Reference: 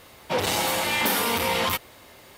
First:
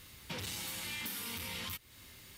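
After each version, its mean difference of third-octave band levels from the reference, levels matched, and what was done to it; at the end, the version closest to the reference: 6.5 dB: amplifier tone stack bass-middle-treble 6-0-2; compression 5:1, threshold -52 dBFS, peak gain reduction 14 dB; trim +12.5 dB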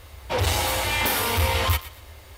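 2.0 dB: resonant low shelf 110 Hz +13.5 dB, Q 3; on a send: thinning echo 117 ms, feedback 30%, high-pass 990 Hz, level -14 dB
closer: second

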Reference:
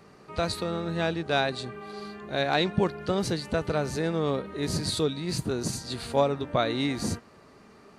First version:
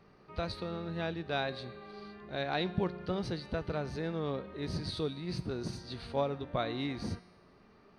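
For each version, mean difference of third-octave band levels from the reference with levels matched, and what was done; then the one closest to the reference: 2.5 dB: Savitzky-Golay filter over 15 samples; bass shelf 67 Hz +10.5 dB; feedback comb 180 Hz, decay 1.2 s, mix 60%; trim -1 dB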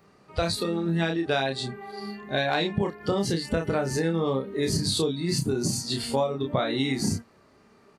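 4.0 dB: spectral noise reduction 12 dB; doubling 30 ms -4 dB; compression 6:1, threshold -28 dBFS, peak gain reduction 11.5 dB; trim +6 dB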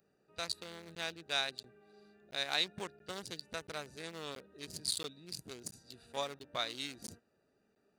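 8.5 dB: local Wiener filter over 41 samples; pre-emphasis filter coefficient 0.97; crackling interface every 0.68 s, samples 512, zero, from 0.95 s; trim +5.5 dB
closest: first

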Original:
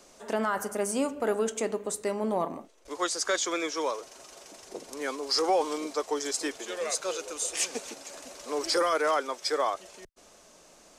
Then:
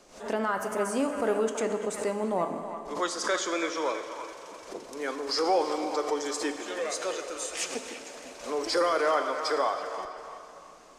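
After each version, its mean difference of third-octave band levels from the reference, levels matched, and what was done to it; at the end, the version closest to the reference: 4.0 dB: treble shelf 5.5 kHz -8 dB; on a send: feedback echo behind a band-pass 328 ms, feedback 35%, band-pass 1.5 kHz, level -8 dB; on the sum: plate-style reverb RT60 2.9 s, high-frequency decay 0.8×, DRR 7.5 dB; swell ahead of each attack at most 120 dB/s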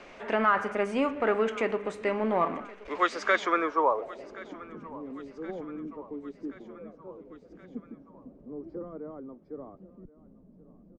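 13.5 dB: companding laws mixed up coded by mu; dynamic bell 1.2 kHz, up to +6 dB, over -45 dBFS, Q 5.5; low-pass sweep 2.3 kHz -> 200 Hz, 3.35–4.74 s; on a send: feedback delay 1075 ms, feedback 56%, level -20 dB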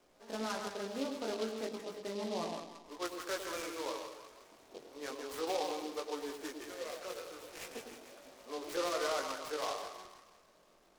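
6.5 dB: low-pass 3.6 kHz 24 dB/octave; on a send: two-band feedback delay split 1 kHz, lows 104 ms, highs 160 ms, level -5.5 dB; on the sum: chorus 0.34 Hz, delay 17 ms, depth 5.9 ms; delay time shaken by noise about 3.6 kHz, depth 0.072 ms; trim -7.5 dB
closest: first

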